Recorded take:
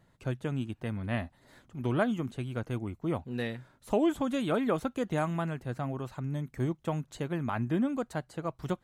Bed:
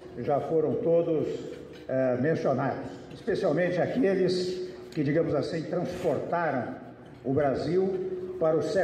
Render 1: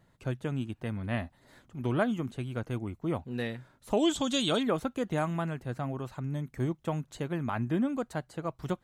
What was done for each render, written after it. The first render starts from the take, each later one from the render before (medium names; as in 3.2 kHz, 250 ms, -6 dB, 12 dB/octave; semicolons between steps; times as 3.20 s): 3.97–4.63 s: high-order bell 4.9 kHz +15 dB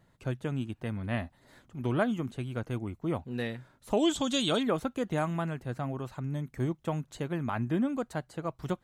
no audible change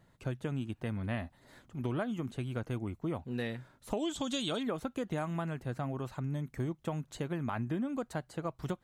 compression 6:1, threshold -31 dBFS, peak gain reduction 9.5 dB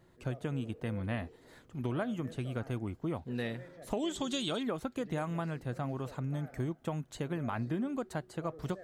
add bed -25.5 dB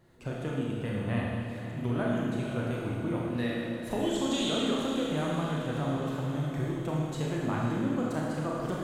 on a send: echo that smears into a reverb 523 ms, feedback 58%, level -11 dB; on the sum: Schroeder reverb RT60 1.8 s, combs from 26 ms, DRR -3.5 dB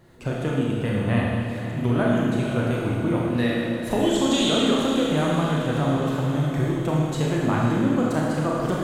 trim +8.5 dB